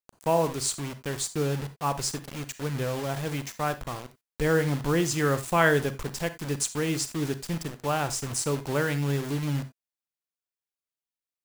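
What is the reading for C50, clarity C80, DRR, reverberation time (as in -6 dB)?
14.0 dB, 20.5 dB, 11.5 dB, no single decay rate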